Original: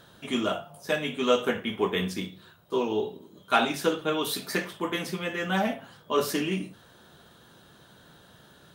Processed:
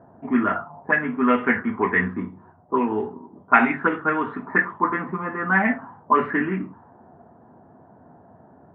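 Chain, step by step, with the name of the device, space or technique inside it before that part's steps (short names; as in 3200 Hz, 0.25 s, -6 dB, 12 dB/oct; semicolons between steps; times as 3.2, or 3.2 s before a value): envelope filter bass rig (envelope low-pass 670–2100 Hz up, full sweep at -21.5 dBFS; speaker cabinet 84–2200 Hz, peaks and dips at 90 Hz +8 dB, 250 Hz +9 dB, 550 Hz -8 dB, 990 Hz +5 dB, 1900 Hz +5 dB); gain +2 dB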